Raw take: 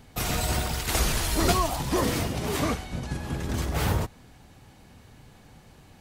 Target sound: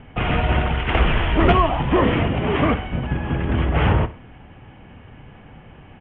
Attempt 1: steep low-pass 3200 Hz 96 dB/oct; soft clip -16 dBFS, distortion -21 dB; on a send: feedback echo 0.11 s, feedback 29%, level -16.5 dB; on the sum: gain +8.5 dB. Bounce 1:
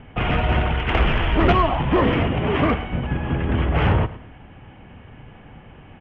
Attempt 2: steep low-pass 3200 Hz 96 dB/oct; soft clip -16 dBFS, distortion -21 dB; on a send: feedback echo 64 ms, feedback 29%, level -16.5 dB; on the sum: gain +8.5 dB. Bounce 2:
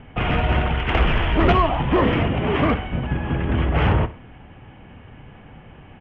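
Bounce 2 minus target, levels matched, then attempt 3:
soft clip: distortion +10 dB
steep low-pass 3200 Hz 96 dB/oct; soft clip -10 dBFS, distortion -31 dB; on a send: feedback echo 64 ms, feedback 29%, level -16.5 dB; on the sum: gain +8.5 dB

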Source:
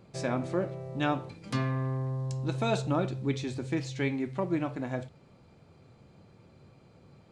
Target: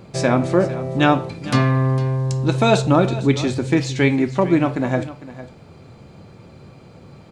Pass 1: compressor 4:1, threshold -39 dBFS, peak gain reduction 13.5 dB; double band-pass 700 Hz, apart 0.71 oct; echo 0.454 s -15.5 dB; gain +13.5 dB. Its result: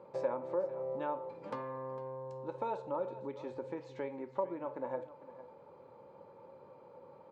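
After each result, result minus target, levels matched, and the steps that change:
compressor: peak gain reduction +13.5 dB; 500 Hz band +5.0 dB
remove: compressor 4:1, threshold -39 dBFS, peak gain reduction 13.5 dB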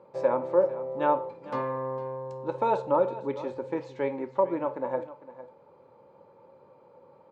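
500 Hz band +4.5 dB
remove: double band-pass 700 Hz, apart 0.71 oct

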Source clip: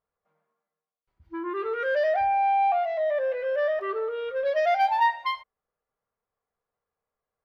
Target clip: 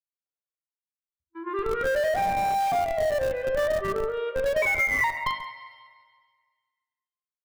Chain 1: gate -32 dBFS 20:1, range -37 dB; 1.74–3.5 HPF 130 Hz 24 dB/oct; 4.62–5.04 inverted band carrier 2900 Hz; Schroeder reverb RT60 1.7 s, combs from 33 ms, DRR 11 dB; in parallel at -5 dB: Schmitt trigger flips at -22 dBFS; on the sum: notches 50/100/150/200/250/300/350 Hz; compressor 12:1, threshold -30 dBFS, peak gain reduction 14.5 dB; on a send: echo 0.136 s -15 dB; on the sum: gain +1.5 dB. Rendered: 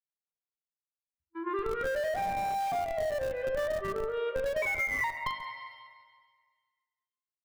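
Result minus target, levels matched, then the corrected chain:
compressor: peak gain reduction +7 dB
gate -32 dBFS 20:1, range -37 dB; 1.74–3.5 HPF 130 Hz 24 dB/oct; 4.62–5.04 inverted band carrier 2900 Hz; Schroeder reverb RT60 1.7 s, combs from 33 ms, DRR 11 dB; in parallel at -5 dB: Schmitt trigger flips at -22 dBFS; on the sum: notches 50/100/150/200/250/300/350 Hz; compressor 12:1, threshold -22.5 dBFS, peak gain reduction 7.5 dB; on a send: echo 0.136 s -15 dB; on the sum: gain +1.5 dB

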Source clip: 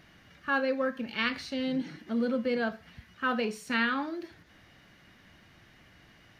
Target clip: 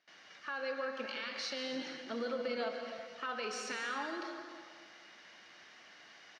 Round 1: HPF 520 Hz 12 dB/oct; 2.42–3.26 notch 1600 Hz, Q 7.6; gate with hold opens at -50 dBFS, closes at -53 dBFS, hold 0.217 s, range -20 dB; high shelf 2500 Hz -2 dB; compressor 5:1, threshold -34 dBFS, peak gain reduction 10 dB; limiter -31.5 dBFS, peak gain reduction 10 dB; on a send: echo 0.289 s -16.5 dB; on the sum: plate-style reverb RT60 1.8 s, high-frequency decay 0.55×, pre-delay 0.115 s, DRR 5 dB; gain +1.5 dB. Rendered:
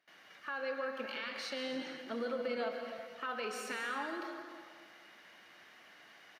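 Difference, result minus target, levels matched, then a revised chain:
8000 Hz band -3.0 dB
HPF 520 Hz 12 dB/oct; 2.42–3.26 notch 1600 Hz, Q 7.6; gate with hold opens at -50 dBFS, closes at -53 dBFS, hold 0.217 s, range -20 dB; synth low-pass 5700 Hz, resonance Q 2.1; high shelf 2500 Hz -2 dB; compressor 5:1, threshold -34 dBFS, peak gain reduction 10 dB; limiter -31.5 dBFS, peak gain reduction 11 dB; on a send: echo 0.289 s -16.5 dB; on the sum: plate-style reverb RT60 1.8 s, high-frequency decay 0.55×, pre-delay 0.115 s, DRR 5 dB; gain +1.5 dB

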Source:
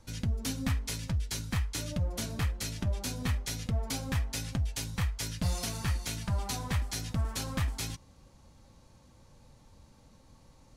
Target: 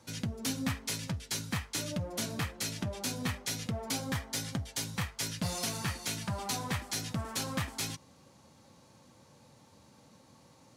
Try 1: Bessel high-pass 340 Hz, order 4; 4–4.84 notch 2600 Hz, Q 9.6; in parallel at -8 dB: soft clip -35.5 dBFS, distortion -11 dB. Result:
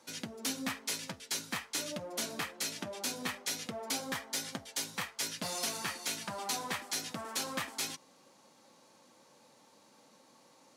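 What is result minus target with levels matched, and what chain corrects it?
125 Hz band -13.5 dB
Bessel high-pass 150 Hz, order 4; 4–4.84 notch 2600 Hz, Q 9.6; in parallel at -8 dB: soft clip -35.5 dBFS, distortion -10 dB

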